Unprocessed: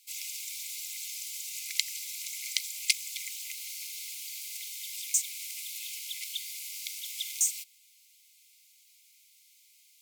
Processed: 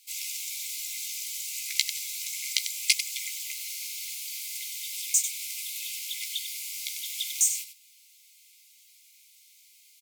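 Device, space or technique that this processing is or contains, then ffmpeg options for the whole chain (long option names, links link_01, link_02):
slapback doubling: -filter_complex "[0:a]asplit=3[link_01][link_02][link_03];[link_02]adelay=15,volume=-6dB[link_04];[link_03]adelay=96,volume=-9dB[link_05];[link_01][link_04][link_05]amix=inputs=3:normalize=0,volume=2.5dB"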